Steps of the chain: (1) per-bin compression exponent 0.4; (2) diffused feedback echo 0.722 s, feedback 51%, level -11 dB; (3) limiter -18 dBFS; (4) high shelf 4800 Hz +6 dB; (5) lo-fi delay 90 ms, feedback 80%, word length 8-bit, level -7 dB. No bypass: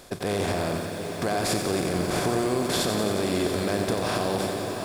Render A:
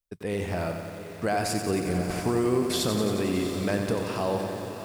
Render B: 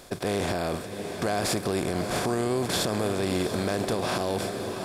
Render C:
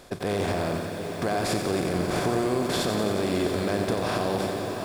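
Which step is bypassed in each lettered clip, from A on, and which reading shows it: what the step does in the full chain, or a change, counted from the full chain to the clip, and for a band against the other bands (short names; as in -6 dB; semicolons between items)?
1, 250 Hz band +3.0 dB; 5, loudness change -1.5 LU; 4, 8 kHz band -4.5 dB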